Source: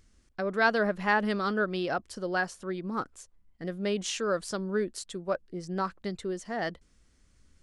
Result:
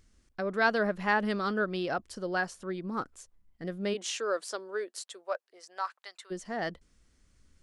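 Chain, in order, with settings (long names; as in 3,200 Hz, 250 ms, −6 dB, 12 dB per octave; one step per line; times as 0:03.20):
0:03.93–0:06.30: high-pass filter 280 Hz → 880 Hz 24 dB per octave
level −1.5 dB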